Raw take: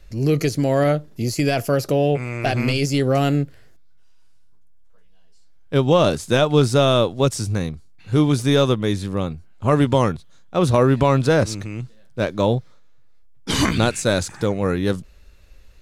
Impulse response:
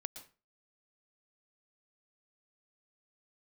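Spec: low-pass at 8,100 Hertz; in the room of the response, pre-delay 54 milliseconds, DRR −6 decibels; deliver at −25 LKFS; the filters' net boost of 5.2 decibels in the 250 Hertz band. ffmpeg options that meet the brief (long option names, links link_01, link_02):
-filter_complex "[0:a]lowpass=8100,equalizer=frequency=250:width_type=o:gain=6.5,asplit=2[link_01][link_02];[1:a]atrim=start_sample=2205,adelay=54[link_03];[link_02][link_03]afir=irnorm=-1:irlink=0,volume=9dB[link_04];[link_01][link_04]amix=inputs=2:normalize=0,volume=-15dB"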